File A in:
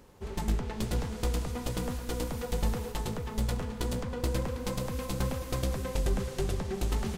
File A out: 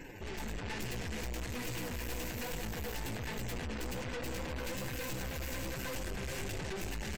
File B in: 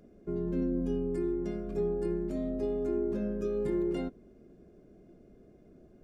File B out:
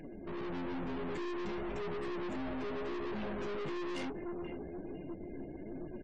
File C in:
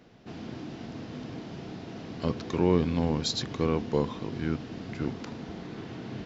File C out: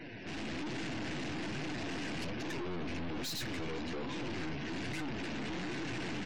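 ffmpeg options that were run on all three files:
ffmpeg -i in.wav -filter_complex "[0:a]asplit=2[link_01][link_02];[link_02]acompressor=threshold=-36dB:ratio=6,volume=2.5dB[link_03];[link_01][link_03]amix=inputs=2:normalize=0,asplit=2[link_04][link_05];[link_05]adelay=500,lowpass=frequency=4600:poles=1,volume=-19.5dB,asplit=2[link_06][link_07];[link_07]adelay=500,lowpass=frequency=4600:poles=1,volume=0.34,asplit=2[link_08][link_09];[link_09]adelay=500,lowpass=frequency=4600:poles=1,volume=0.34[link_10];[link_04][link_06][link_08][link_10]amix=inputs=4:normalize=0,alimiter=limit=-19.5dB:level=0:latency=1:release=239,aemphasis=mode=production:type=cd,flanger=delay=5.8:depth=9.3:regen=19:speed=1.2:shape=triangular,superequalizer=6b=1.78:10b=0.316:11b=2.82:12b=2.82:16b=0.282,aeval=exprs='(tanh(251*val(0)+0.55)-tanh(0.55))/251':channel_layout=same,afftdn=noise_reduction=36:noise_floor=-65,dynaudnorm=framelen=340:gausssize=3:maxgain=3.5dB,volume=6.5dB" out.wav

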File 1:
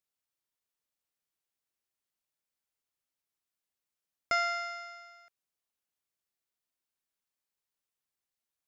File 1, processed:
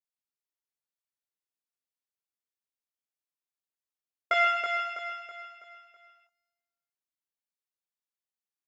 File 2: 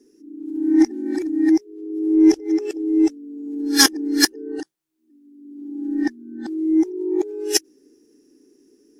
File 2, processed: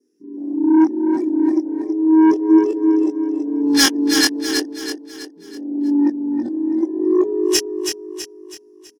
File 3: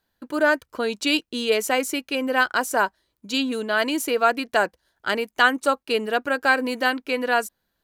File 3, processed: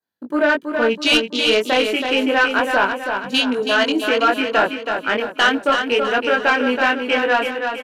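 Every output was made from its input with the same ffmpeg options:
ffmpeg -i in.wav -filter_complex "[0:a]afwtdn=0.0282,highpass=140,adynamicequalizer=threshold=0.00891:dfrequency=3000:dqfactor=2.2:tfrequency=3000:tqfactor=2.2:attack=5:release=100:ratio=0.375:range=3.5:mode=boostabove:tftype=bell,asplit=2[link_01][link_02];[link_02]alimiter=limit=-10.5dB:level=0:latency=1:release=351,volume=1.5dB[link_03];[link_01][link_03]amix=inputs=2:normalize=0,flanger=delay=20:depth=3.5:speed=0.31,asoftclip=type=tanh:threshold=-10dB,asplit=2[link_04][link_05];[link_05]aecho=0:1:326|652|978|1304|1630:0.501|0.221|0.097|0.0427|0.0188[link_06];[link_04][link_06]amix=inputs=2:normalize=0,volume=2.5dB" out.wav

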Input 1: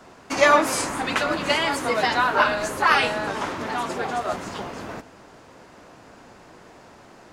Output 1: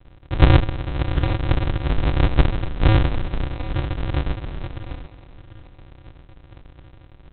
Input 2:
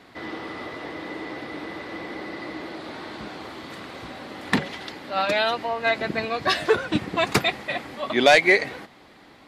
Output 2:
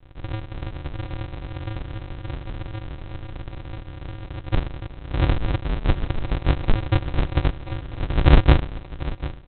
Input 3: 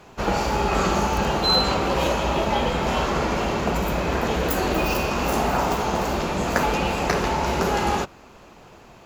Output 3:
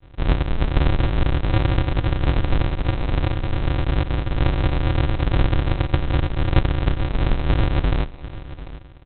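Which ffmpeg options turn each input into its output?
ffmpeg -i in.wav -af "aresample=8000,acrusher=samples=37:mix=1:aa=0.000001,aresample=44100,aecho=1:1:744:0.168,volume=4dB" out.wav

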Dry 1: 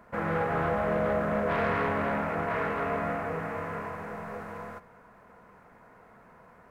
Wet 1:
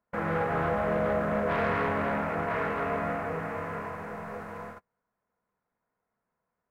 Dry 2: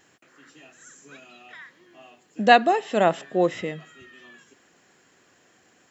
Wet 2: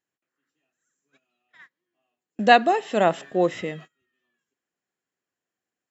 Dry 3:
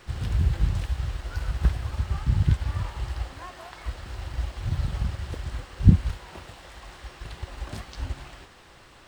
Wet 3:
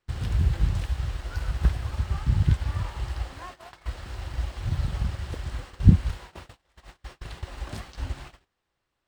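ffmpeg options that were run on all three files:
ffmpeg -i in.wav -af "agate=range=-29dB:threshold=-41dB:ratio=16:detection=peak" out.wav

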